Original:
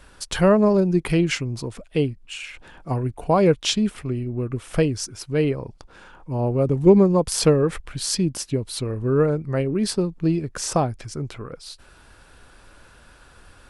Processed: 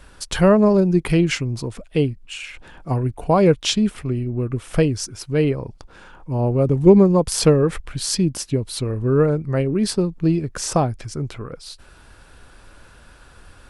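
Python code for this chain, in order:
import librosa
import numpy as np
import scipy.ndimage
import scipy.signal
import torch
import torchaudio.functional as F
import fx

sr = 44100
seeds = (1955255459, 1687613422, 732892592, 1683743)

y = fx.low_shelf(x, sr, hz=190.0, db=3.0)
y = y * librosa.db_to_amplitude(1.5)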